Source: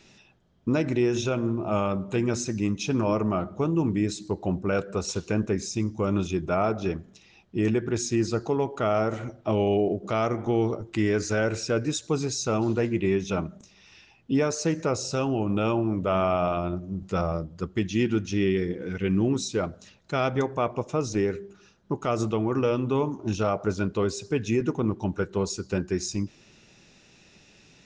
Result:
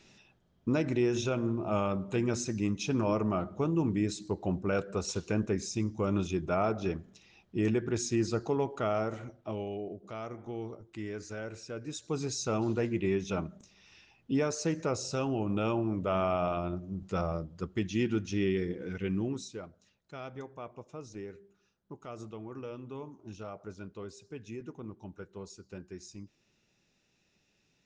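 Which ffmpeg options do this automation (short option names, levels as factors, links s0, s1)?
-af "volume=1.78,afade=t=out:st=8.63:d=1.08:silence=0.298538,afade=t=in:st=11.8:d=0.5:silence=0.334965,afade=t=out:st=18.87:d=0.79:silence=0.251189"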